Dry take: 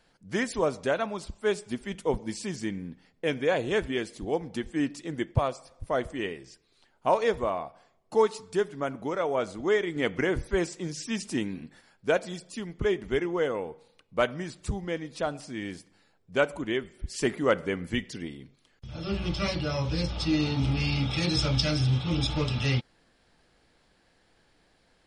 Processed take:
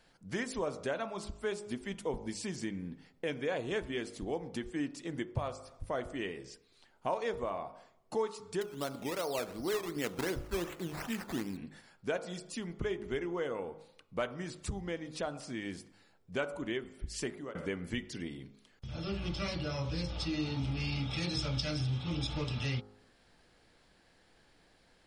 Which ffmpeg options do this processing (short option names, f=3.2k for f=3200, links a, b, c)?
-filter_complex "[0:a]asettb=1/sr,asplit=3[a][b][c];[a]atrim=end=8.614[d];[b]atrim=start=8.61:end=11.57,asetpts=PTS-STARTPTS,afade=t=in:d=0.004:c=qsin,afade=t=out:st=2.956:d=0.004:c=qsin,acrusher=samples=12:mix=1:aa=0.000001:lfo=1:lforange=7.2:lforate=2.7[e];[c]atrim=start=11.566[f];[d][e]acrossfade=d=0.004:c1=hsin:c2=qsin[g];[g][f]acrossfade=d=0.004:c1=qsin:c2=hsin,asplit=2[h][i];[h]atrim=end=17.55,asetpts=PTS-STARTPTS,afade=t=out:st=17.09:d=0.46[j];[i]atrim=start=17.55,asetpts=PTS-STARTPTS,afade=t=in:d=0.004:c=hsin[k];[j][k]concat=n=2:v=0:a=1,bandreject=f=51.89:t=h:w=4,bandreject=f=103.78:t=h:w=4,bandreject=f=155.67:t=h:w=4,bandreject=f=207.56:t=h:w=4,bandreject=f=259.45:t=h:w=4,bandreject=f=311.34:t=h:w=4,bandreject=f=363.23:t=h:w=4,bandreject=f=415.12:t=h:w=4,bandreject=f=467.01:t=h:w=4,bandreject=f=518.9:t=h:w=4,bandreject=f=570.79:t=h:w=4,bandreject=f=622.68:t=h:w=4,bandreject=f=674.57:t=h:w=4,bandreject=f=726.46:t=h:w=4,bandreject=f=778.35:t=h:w=4,bandreject=f=830.24:t=h:w=4,bandreject=f=882.13:t=h:w=4,bandreject=f=934.02:t=h:w=4,bandreject=f=985.91:t=h:w=4,bandreject=f=1.0378k:t=h:w=4,bandreject=f=1.08969k:t=h:w=4,bandreject=f=1.14158k:t=h:w=4,bandreject=f=1.19347k:t=h:w=4,bandreject=f=1.24536k:t=h:w=4,bandreject=f=1.29725k:t=h:w=4,bandreject=f=1.34914k:t=h:w=4,bandreject=f=1.40103k:t=h:w=4,bandreject=f=1.45292k:t=h:w=4,acompressor=threshold=-38dB:ratio=2"